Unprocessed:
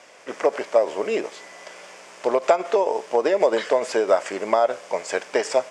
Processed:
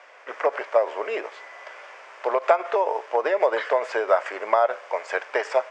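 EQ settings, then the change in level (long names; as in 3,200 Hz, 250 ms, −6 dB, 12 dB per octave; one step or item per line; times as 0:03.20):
flat-topped band-pass 780 Hz, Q 0.59
spectral tilt +5 dB per octave
+2.0 dB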